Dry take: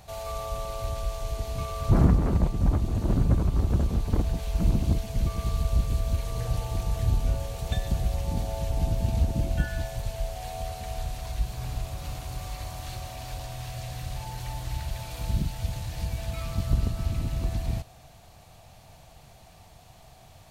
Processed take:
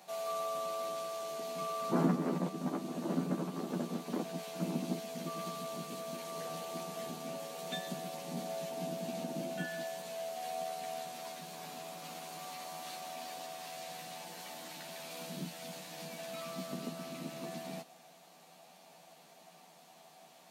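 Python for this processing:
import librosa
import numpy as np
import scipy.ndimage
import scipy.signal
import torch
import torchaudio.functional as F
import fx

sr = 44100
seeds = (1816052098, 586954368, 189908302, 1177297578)

y = scipy.signal.sosfilt(scipy.signal.butter(8, 180.0, 'highpass', fs=sr, output='sos'), x)
y = fx.doubler(y, sr, ms=12.0, db=-3.0)
y = y * librosa.db_to_amplitude(-5.5)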